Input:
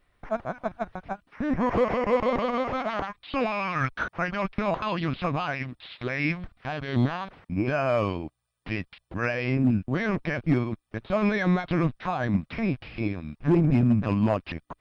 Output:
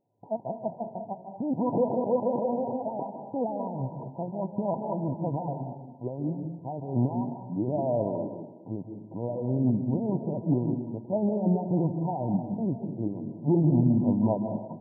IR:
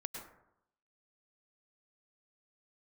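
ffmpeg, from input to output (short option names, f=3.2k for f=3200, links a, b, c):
-filter_complex "[0:a]asplit=2[a][b];[1:a]atrim=start_sample=2205,asetrate=30429,aresample=44100,lowpass=5.3k[c];[b][c]afir=irnorm=-1:irlink=0,volume=0.5dB[d];[a][d]amix=inputs=2:normalize=0,afftfilt=real='re*between(b*sr/4096,100,1000)':imag='im*between(b*sr/4096,100,1000)':win_size=4096:overlap=0.75,volume=-7.5dB"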